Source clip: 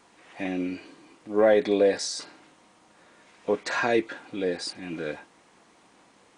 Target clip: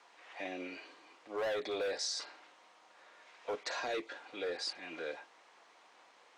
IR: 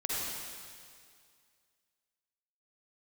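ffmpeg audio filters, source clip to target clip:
-filter_complex "[0:a]acrossover=split=460 6600:gain=0.0708 1 0.112[s0][s1][s2];[s0][s1][s2]amix=inputs=3:normalize=0,acrossover=split=700|3500[s3][s4][s5];[s3]asoftclip=type=hard:threshold=0.0224[s6];[s4]acompressor=threshold=0.00708:ratio=6[s7];[s6][s7][s5]amix=inputs=3:normalize=0,volume=0.794"

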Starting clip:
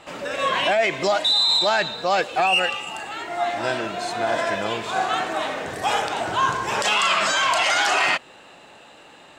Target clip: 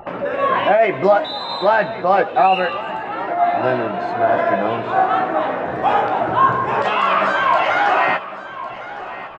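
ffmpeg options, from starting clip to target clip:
-filter_complex "[0:a]highpass=67,anlmdn=1,lowpass=1400,bandreject=f=50:t=h:w=6,bandreject=f=100:t=h:w=6,acompressor=mode=upward:threshold=0.0355:ratio=2.5,asplit=2[s0][s1];[s1]adelay=16,volume=0.447[s2];[s0][s2]amix=inputs=2:normalize=0,asplit=2[s3][s4];[s4]aecho=0:1:1106|2212|3318|4424:0.178|0.0836|0.0393|0.0185[s5];[s3][s5]amix=inputs=2:normalize=0,volume=2.11"

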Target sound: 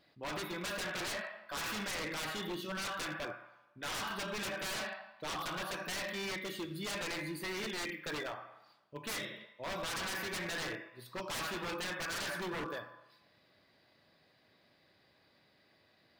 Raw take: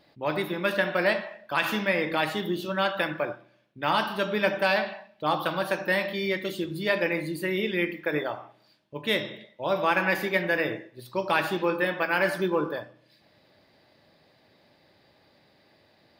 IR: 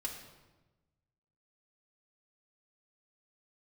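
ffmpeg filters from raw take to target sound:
-filter_complex "[0:a]asplit=2[s0][s1];[s1]highpass=f=1100:t=q:w=2.1[s2];[1:a]atrim=start_sample=2205[s3];[s2][s3]afir=irnorm=-1:irlink=0,volume=0.531[s4];[s0][s4]amix=inputs=2:normalize=0,aeval=exprs='0.0562*(abs(mod(val(0)/0.0562+3,4)-2)-1)':c=same,volume=0.376"

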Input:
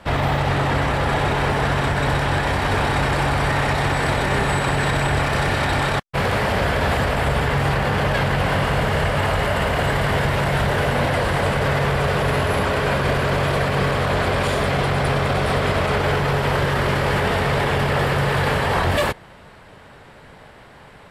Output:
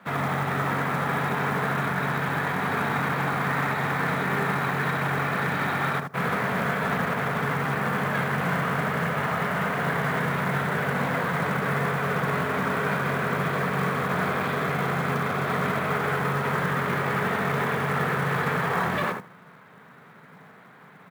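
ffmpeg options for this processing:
-filter_complex "[0:a]highpass=f=150:w=0.5412,highpass=f=150:w=1.3066,equalizer=f=170:t=q:w=4:g=5,equalizer=f=330:t=q:w=4:g=-7,equalizer=f=570:t=q:w=4:g=-8,equalizer=f=840:t=q:w=4:g=-4,equalizer=f=1300:t=q:w=4:g=4,equalizer=f=2900:t=q:w=4:g=-8,lowpass=f=3400:w=0.5412,lowpass=f=3400:w=1.3066,asplit=2[s0][s1];[s1]adelay=77,lowpass=f=1300:p=1,volume=0.668,asplit=2[s2][s3];[s3]adelay=77,lowpass=f=1300:p=1,volume=0.17,asplit=2[s4][s5];[s5]adelay=77,lowpass=f=1300:p=1,volume=0.17[s6];[s0][s2][s4][s6]amix=inputs=4:normalize=0,acrusher=bits=5:mode=log:mix=0:aa=0.000001,volume=0.596"

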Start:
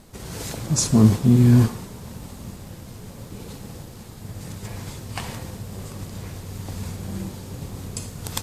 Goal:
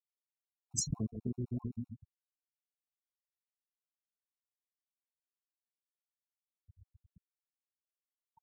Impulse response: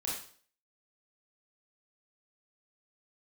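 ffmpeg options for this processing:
-filter_complex "[0:a]lowpass=11000,agate=range=0.251:threshold=0.0501:ratio=16:detection=peak,asplit=2[s0][s1];[s1]adelay=137,lowpass=f=2000:p=1,volume=0.299,asplit=2[s2][s3];[s3]adelay=137,lowpass=f=2000:p=1,volume=0.41,asplit=2[s4][s5];[s5]adelay=137,lowpass=f=2000:p=1,volume=0.41,asplit=2[s6][s7];[s7]adelay=137,lowpass=f=2000:p=1,volume=0.41[s8];[s0][s2][s4][s6][s8]amix=inputs=5:normalize=0,afftfilt=real='re*gte(hypot(re,im),0.112)':imag='im*gte(hypot(re,im),0.112)':win_size=1024:overlap=0.75,acompressor=threshold=0.0794:ratio=12,highshelf=f=6200:g=-9.5,aphaser=in_gain=1:out_gain=1:delay=2.9:decay=0.3:speed=1.1:type=triangular,bass=f=250:g=-4,treble=f=4000:g=10,afftfilt=real='re*gt(sin(2*PI*7.8*pts/sr)*(1-2*mod(floor(b*sr/1024/730),2)),0)':imag='im*gt(sin(2*PI*7.8*pts/sr)*(1-2*mod(floor(b*sr/1024/730),2)),0)':win_size=1024:overlap=0.75,volume=0.473"

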